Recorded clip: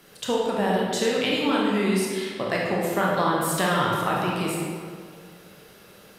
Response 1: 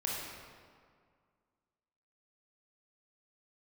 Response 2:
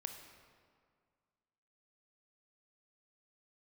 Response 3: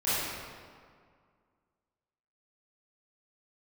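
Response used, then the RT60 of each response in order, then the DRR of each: 1; 2.0 s, 2.0 s, 2.0 s; -4.0 dB, 5.0 dB, -14.0 dB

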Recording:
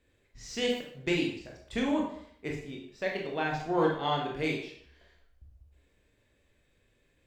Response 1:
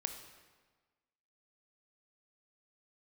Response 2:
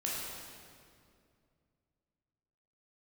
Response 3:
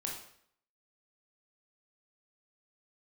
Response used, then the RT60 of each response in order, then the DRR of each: 3; 1.4 s, 2.3 s, 0.65 s; 6.0 dB, -5.5 dB, -1.5 dB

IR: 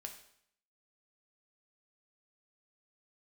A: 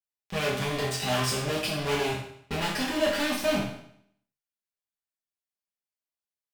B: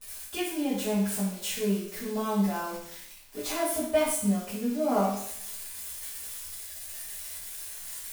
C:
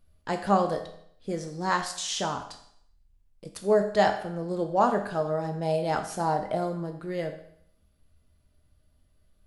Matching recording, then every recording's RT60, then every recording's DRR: C; 0.65 s, 0.65 s, 0.65 s; -6.0 dB, -13.0 dB, 3.5 dB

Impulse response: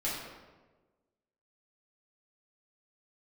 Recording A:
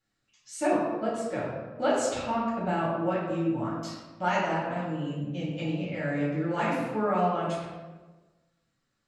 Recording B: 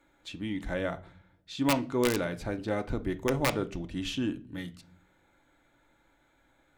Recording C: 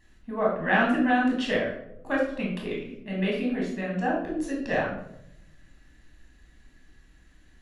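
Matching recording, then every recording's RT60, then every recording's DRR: A; 1.3 s, no single decay rate, 0.80 s; -8.0 dB, 7.0 dB, -3.5 dB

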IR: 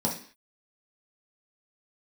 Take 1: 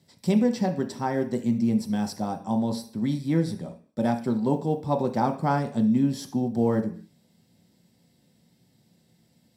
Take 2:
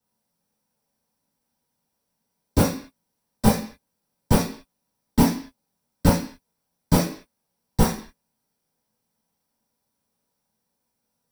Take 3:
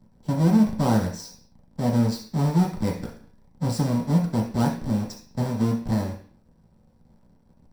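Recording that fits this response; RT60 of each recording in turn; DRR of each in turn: 3; 0.45 s, 0.45 s, 0.45 s; 3.5 dB, -12.5 dB, -3.5 dB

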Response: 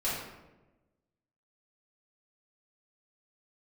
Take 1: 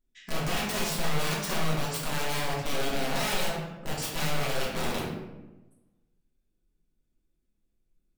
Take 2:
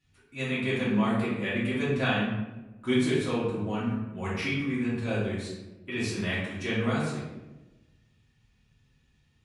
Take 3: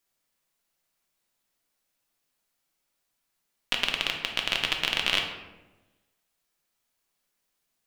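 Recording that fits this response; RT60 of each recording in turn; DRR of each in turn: 2; 1.1 s, 1.1 s, 1.1 s; -6.0 dB, -10.5 dB, 1.5 dB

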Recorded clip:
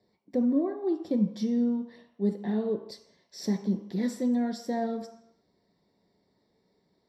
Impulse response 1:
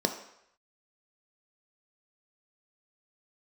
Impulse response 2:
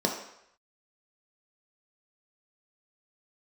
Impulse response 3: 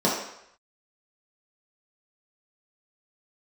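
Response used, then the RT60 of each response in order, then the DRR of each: 1; 0.75 s, 0.75 s, 0.75 s; 5.0 dB, 0.0 dB, -6.5 dB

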